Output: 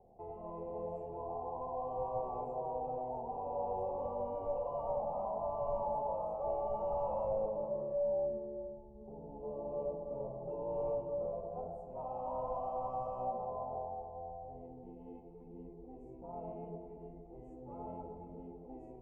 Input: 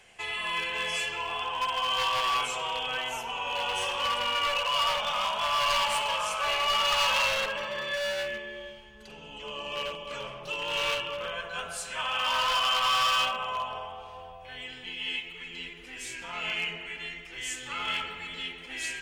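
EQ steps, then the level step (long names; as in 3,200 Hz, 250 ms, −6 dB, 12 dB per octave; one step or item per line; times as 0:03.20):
elliptic low-pass filter 790 Hz, stop band 50 dB
+1.0 dB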